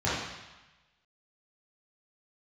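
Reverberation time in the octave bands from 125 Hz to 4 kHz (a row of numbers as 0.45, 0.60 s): 1.2, 1.0, 0.95, 1.2, 1.2, 1.1 s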